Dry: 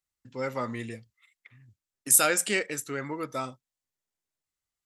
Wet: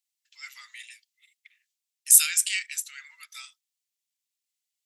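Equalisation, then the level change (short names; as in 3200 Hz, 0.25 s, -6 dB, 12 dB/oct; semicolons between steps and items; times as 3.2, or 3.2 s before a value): inverse Chebyshev high-pass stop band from 400 Hz, stop band 80 dB; +4.5 dB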